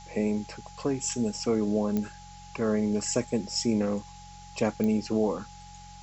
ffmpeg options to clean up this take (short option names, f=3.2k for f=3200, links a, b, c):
-af "adeclick=t=4,bandreject=f=45:t=h:w=4,bandreject=f=90:t=h:w=4,bandreject=f=135:t=h:w=4,bandreject=f=180:t=h:w=4,bandreject=f=830:w=30,afftdn=nr=27:nf=-47"